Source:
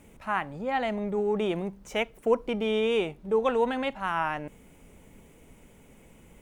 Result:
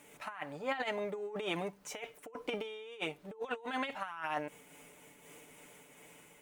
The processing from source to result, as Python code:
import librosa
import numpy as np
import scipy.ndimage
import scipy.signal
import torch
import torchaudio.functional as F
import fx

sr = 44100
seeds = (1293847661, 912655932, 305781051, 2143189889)

y = fx.highpass(x, sr, hz=850.0, slope=6)
y = y + 0.58 * np.pad(y, (int(6.8 * sr / 1000.0), 0))[:len(y)]
y = fx.over_compress(y, sr, threshold_db=-35.0, ratio=-0.5)
y = fx.am_noise(y, sr, seeds[0], hz=5.7, depth_pct=60)
y = y * 10.0 ** (1.0 / 20.0)